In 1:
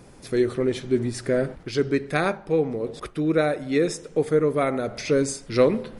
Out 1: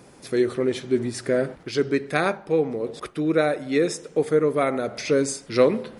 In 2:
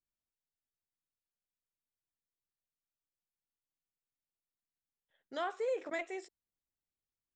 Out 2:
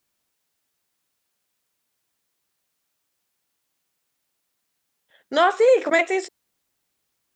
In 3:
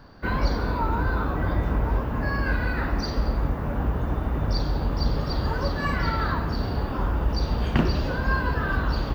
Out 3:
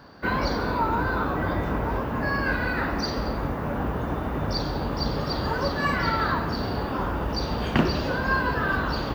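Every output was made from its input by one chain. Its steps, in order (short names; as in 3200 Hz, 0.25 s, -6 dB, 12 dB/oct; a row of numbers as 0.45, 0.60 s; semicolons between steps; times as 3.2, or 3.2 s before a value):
HPF 180 Hz 6 dB/oct; normalise peaks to -6 dBFS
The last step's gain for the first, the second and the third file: +1.5, +19.5, +3.0 dB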